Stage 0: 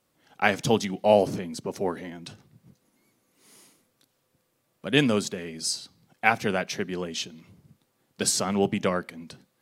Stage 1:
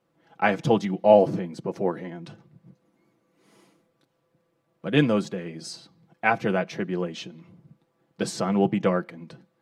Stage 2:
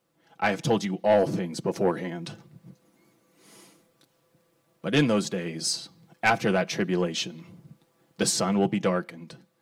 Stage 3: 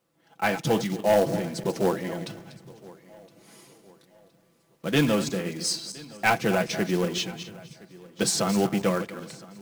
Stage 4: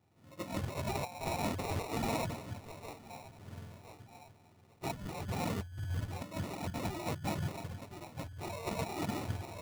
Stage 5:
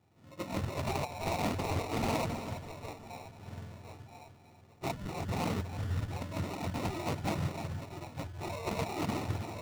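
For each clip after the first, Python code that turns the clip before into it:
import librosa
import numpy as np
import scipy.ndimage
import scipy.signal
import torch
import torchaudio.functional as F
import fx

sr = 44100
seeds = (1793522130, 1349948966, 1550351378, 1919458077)

y1 = fx.lowpass(x, sr, hz=1100.0, slope=6)
y1 = fx.low_shelf(y1, sr, hz=63.0, db=-11.5)
y1 = y1 + 0.54 * np.pad(y1, (int(6.0 * sr / 1000.0), 0))[:len(y1)]
y1 = F.gain(torch.from_numpy(y1), 3.0).numpy()
y2 = fx.high_shelf(y1, sr, hz=3800.0, db=12.0)
y2 = fx.rider(y2, sr, range_db=3, speed_s=0.5)
y2 = 10.0 ** (-13.0 / 20.0) * np.tanh(y2 / 10.0 ** (-13.0 / 20.0))
y3 = fx.reverse_delay_fb(y2, sr, ms=126, feedback_pct=44, wet_db=-11)
y3 = fx.quant_float(y3, sr, bits=2)
y3 = fx.echo_feedback(y3, sr, ms=1016, feedback_pct=40, wet_db=-22.5)
y4 = fx.octave_mirror(y3, sr, pivot_hz=670.0)
y4 = fx.over_compress(y4, sr, threshold_db=-35.0, ratio=-1.0)
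y4 = fx.sample_hold(y4, sr, seeds[0], rate_hz=1600.0, jitter_pct=0)
y4 = F.gain(torch.from_numpy(y4), -4.0).numpy()
y5 = y4 + 10.0 ** (-11.5 / 20.0) * np.pad(y4, (int(328 * sr / 1000.0), 0))[:len(y4)]
y5 = np.repeat(scipy.signal.resample_poly(y5, 1, 2), 2)[:len(y5)]
y5 = fx.doppler_dist(y5, sr, depth_ms=0.46)
y5 = F.gain(torch.from_numpy(y5), 2.5).numpy()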